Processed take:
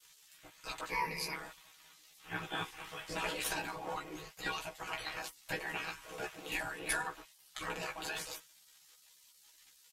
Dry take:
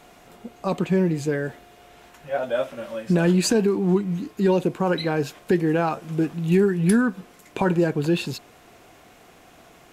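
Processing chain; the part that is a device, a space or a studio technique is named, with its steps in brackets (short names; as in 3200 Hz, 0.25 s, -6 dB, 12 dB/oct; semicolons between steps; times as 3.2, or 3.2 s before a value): spectral gate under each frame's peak -20 dB weak; 0.89–1.34 ripple EQ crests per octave 0.86, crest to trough 16 dB; doubler 15 ms -3 dB; ring-modulated robot voice (ring modulator 34 Hz; comb 6.3 ms, depth 81%); gain -2 dB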